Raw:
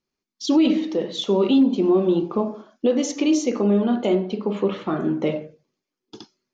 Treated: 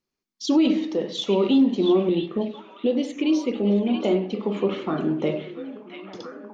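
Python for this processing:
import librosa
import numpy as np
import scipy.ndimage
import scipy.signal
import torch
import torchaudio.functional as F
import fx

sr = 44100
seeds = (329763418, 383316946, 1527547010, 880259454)

p1 = fx.env_phaser(x, sr, low_hz=550.0, high_hz=1400.0, full_db=-15.5, at=(2.09, 4.03))
p2 = p1 + fx.echo_stepped(p1, sr, ms=678, hz=2800.0, octaves=-0.7, feedback_pct=70, wet_db=-4.5, dry=0)
p3 = fx.rev_spring(p2, sr, rt60_s=1.3, pass_ms=(45,), chirp_ms=50, drr_db=20.0)
y = F.gain(torch.from_numpy(p3), -1.5).numpy()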